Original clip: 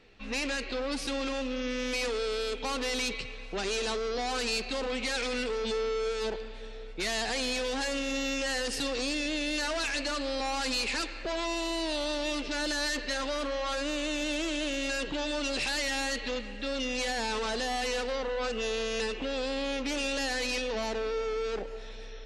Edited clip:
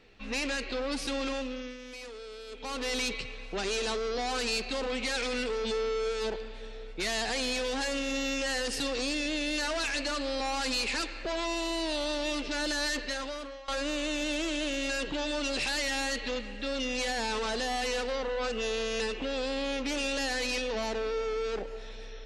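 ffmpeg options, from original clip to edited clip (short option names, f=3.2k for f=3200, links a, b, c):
-filter_complex "[0:a]asplit=4[a][b][c][d];[a]atrim=end=1.78,asetpts=PTS-STARTPTS,afade=t=out:st=1.32:d=0.46:silence=0.237137[e];[b]atrim=start=1.78:end=2.47,asetpts=PTS-STARTPTS,volume=-12.5dB[f];[c]atrim=start=2.47:end=13.68,asetpts=PTS-STARTPTS,afade=t=in:d=0.46:silence=0.237137,afade=t=out:st=10.49:d=0.72:silence=0.112202[g];[d]atrim=start=13.68,asetpts=PTS-STARTPTS,afade=t=in:d=0.004:c=hsin:silence=0.112202[h];[e][f][g][h]concat=n=4:v=0:a=1"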